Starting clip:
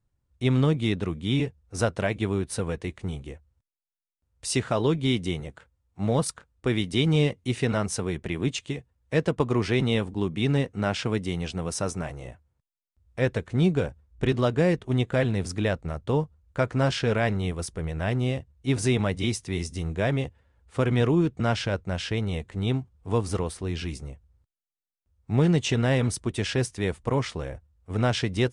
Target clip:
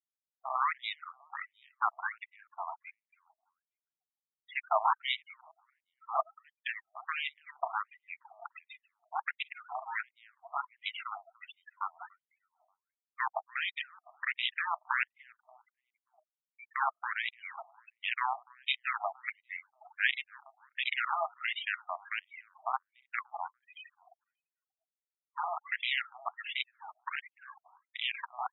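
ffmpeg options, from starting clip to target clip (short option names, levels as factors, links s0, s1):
-filter_complex "[0:a]asplit=3[s0][s1][s2];[s0]afade=t=out:st=15.11:d=0.02[s3];[s1]asplit=3[s4][s5][s6];[s4]bandpass=f=270:t=q:w=8,volume=1[s7];[s5]bandpass=f=2290:t=q:w=8,volume=0.501[s8];[s6]bandpass=f=3010:t=q:w=8,volume=0.355[s9];[s7][s8][s9]amix=inputs=3:normalize=0,afade=t=in:st=15.11:d=0.02,afade=t=out:st=16.7:d=0.02[s10];[s2]afade=t=in:st=16.7:d=0.02[s11];[s3][s10][s11]amix=inputs=3:normalize=0,adynamicequalizer=threshold=0.00891:dfrequency=920:dqfactor=1:tfrequency=920:tqfactor=1:attack=5:release=100:ratio=0.375:range=2:mode=boostabove:tftype=bell,acrusher=bits=4:dc=4:mix=0:aa=0.000001,acrossover=split=420[s12][s13];[s12]asoftclip=type=tanh:threshold=0.075[s14];[s14][s13]amix=inputs=2:normalize=0,aphaser=in_gain=1:out_gain=1:delay=1.6:decay=0.42:speed=0.4:type=sinusoidal,afftfilt=real='re*gte(hypot(re,im),0.0282)':imag='im*gte(hypot(re,im),0.0282)':win_size=1024:overlap=0.75,asplit=2[s15][s16];[s16]adelay=291,lowpass=f=1100:p=1,volume=0.0891,asplit=2[s17][s18];[s18]adelay=291,lowpass=f=1100:p=1,volume=0.51,asplit=2[s19][s20];[s20]adelay=291,lowpass=f=1100:p=1,volume=0.51,asplit=2[s21][s22];[s22]adelay=291,lowpass=f=1100:p=1,volume=0.51[s23];[s17][s19][s21][s23]amix=inputs=4:normalize=0[s24];[s15][s24]amix=inputs=2:normalize=0,afftfilt=real='re*between(b*sr/1024,880*pow(2800/880,0.5+0.5*sin(2*PI*1.4*pts/sr))/1.41,880*pow(2800/880,0.5+0.5*sin(2*PI*1.4*pts/sr))*1.41)':imag='im*between(b*sr/1024,880*pow(2800/880,0.5+0.5*sin(2*PI*1.4*pts/sr))/1.41,880*pow(2800/880,0.5+0.5*sin(2*PI*1.4*pts/sr))*1.41)':win_size=1024:overlap=0.75"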